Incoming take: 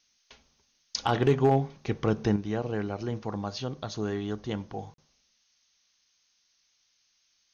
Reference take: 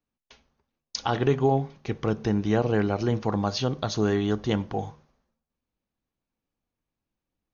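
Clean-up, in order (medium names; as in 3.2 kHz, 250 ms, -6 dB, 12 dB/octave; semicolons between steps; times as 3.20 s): clip repair -14 dBFS; interpolate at 4.94 s, 42 ms; noise print and reduce 16 dB; gain correction +7.5 dB, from 2.36 s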